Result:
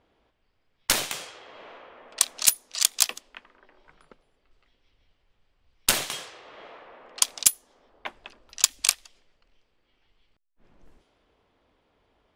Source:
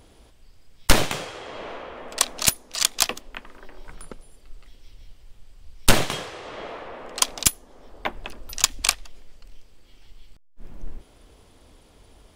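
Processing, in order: low-pass opened by the level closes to 2500 Hz, open at -20.5 dBFS; tilt +3 dB/oct; mismatched tape noise reduction decoder only; gain -8 dB

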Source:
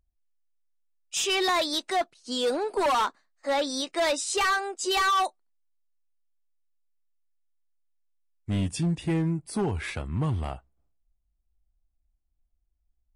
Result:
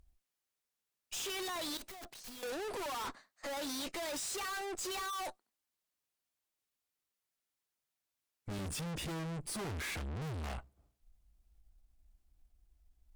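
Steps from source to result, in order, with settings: tube stage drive 51 dB, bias 0.7; 1.77–2.43 wrapped overs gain 55 dB; gain +12 dB

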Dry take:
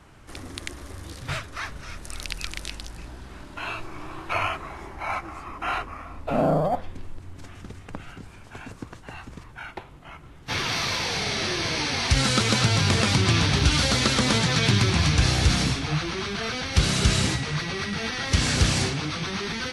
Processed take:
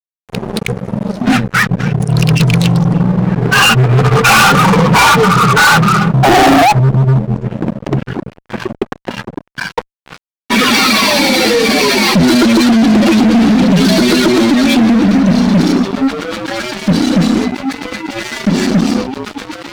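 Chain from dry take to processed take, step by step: spectral contrast raised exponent 2; Doppler pass-by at 4.67, 5 m/s, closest 5.2 m; frequency shift +120 Hz; fuzz box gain 43 dB, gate -52 dBFS; gain +7.5 dB

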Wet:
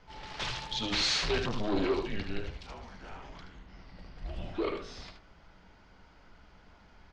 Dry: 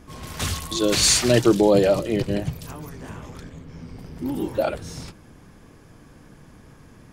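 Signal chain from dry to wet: echo 75 ms -8.5 dB; frequency shift -210 Hz; soft clip -16.5 dBFS, distortion -10 dB; LPF 4800 Hz 24 dB/oct; bell 120 Hz -14.5 dB 1.8 oct; de-hum 52.3 Hz, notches 35; gain -3.5 dB

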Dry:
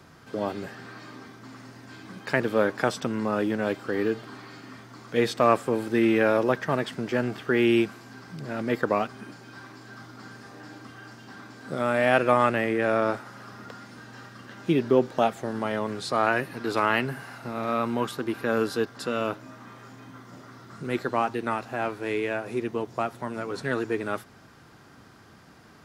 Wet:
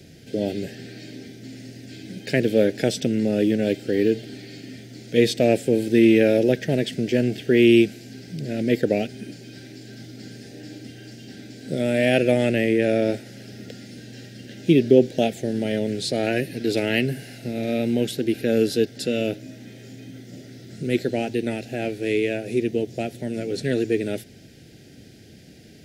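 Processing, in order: Butterworth band-stop 1100 Hz, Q 0.65; gain +7 dB

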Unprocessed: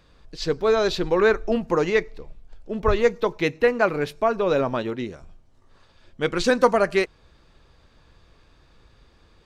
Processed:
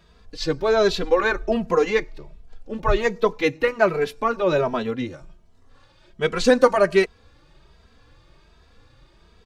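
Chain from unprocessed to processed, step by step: endless flanger 2.7 ms +1.3 Hz; gain +4.5 dB

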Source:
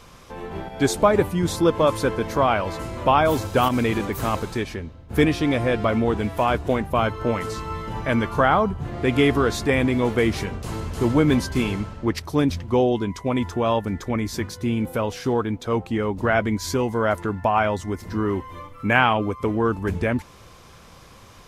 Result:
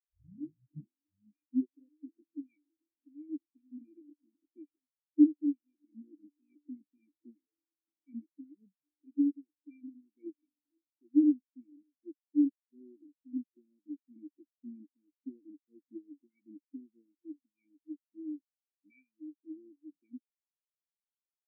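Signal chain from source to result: tape start at the beginning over 2.10 s; double band-pass 840 Hz, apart 3 oct; tilt -1.5 dB/oct; echo 0.601 s -23 dB; vocal rider within 5 dB 0.5 s; spectral expander 4:1; gain +2 dB

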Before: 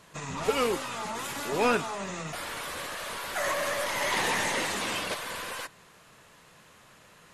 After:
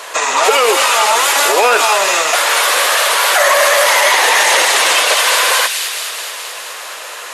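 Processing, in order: HPF 480 Hz 24 dB/oct; in parallel at -0.5 dB: compressor 6:1, threshold -45 dBFS, peak gain reduction 21.5 dB; on the sum: short-mantissa float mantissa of 6-bit; on a send: thin delay 0.214 s, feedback 69%, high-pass 3100 Hz, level -4 dB; on the sum: maximiser +22.5 dB; gain -1 dB

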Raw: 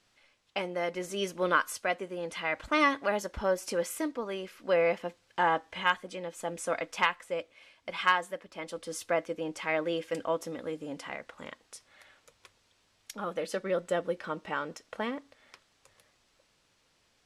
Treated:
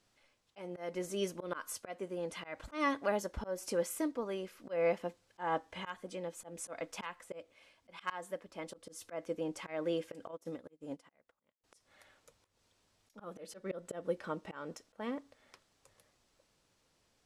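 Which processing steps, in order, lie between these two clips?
auto swell 0.185 s; bell 2500 Hz -6 dB 2.5 oct; 10.31–11.64 upward expander 2.5:1, over -55 dBFS; gain -1.5 dB

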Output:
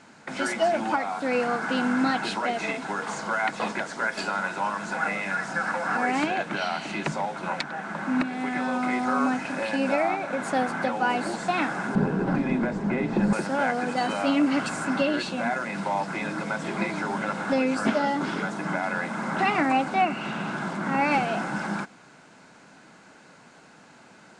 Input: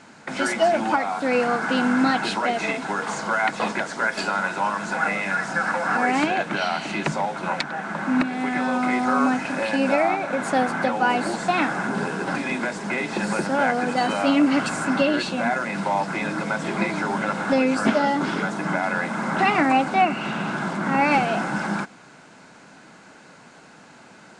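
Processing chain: 11.95–13.33 tilt -4 dB/oct; gain -4 dB

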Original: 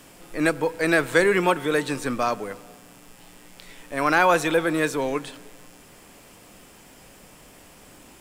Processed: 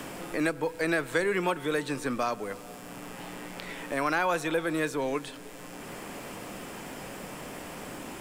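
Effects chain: three-band squash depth 70%; gain -6 dB

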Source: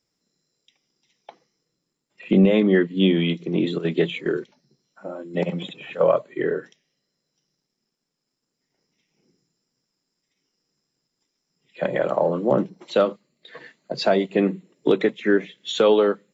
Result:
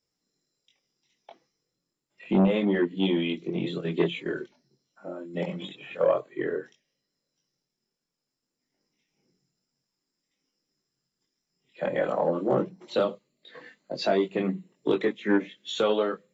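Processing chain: chorus voices 4, 0.3 Hz, delay 22 ms, depth 2 ms; core saturation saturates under 380 Hz; gain -2 dB

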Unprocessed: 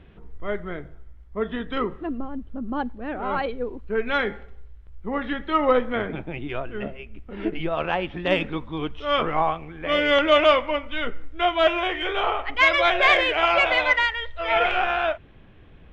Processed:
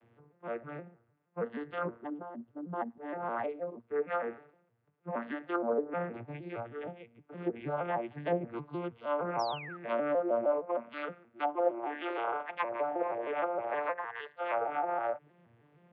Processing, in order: arpeggiated vocoder major triad, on A#2, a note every 0.156 s; three-band isolator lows -12 dB, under 430 Hz, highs -13 dB, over 2900 Hz; in parallel at -11.5 dB: soft clip -15.5 dBFS, distortion -17 dB; on the sum: treble ducked by the level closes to 570 Hz, closed at -18 dBFS; painted sound fall, 9.39–9.77, 1200–6000 Hz -38 dBFS; gain -7 dB

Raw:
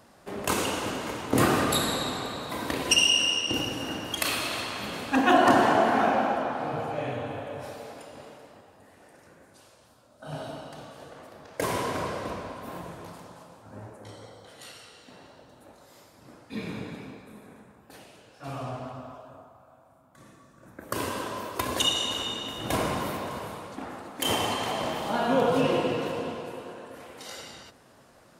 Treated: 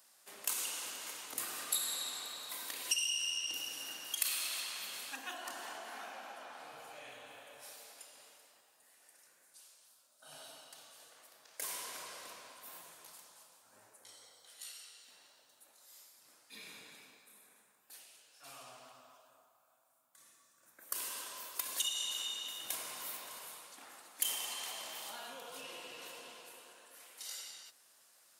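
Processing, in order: compressor 3:1, threshold -29 dBFS, peak gain reduction 11 dB; differentiator; gain +1 dB

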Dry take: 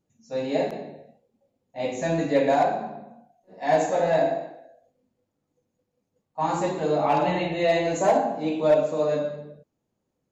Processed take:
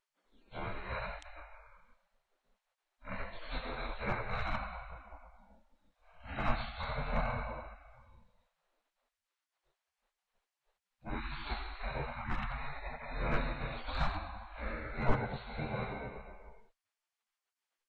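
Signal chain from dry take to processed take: spectral gate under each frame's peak -30 dB weak; tilt -3.5 dB/oct; in parallel at +0.5 dB: compressor, threshold -57 dBFS, peak gain reduction 25.5 dB; on the sum: speed mistake 78 rpm record played at 45 rpm; gain +6.5 dB

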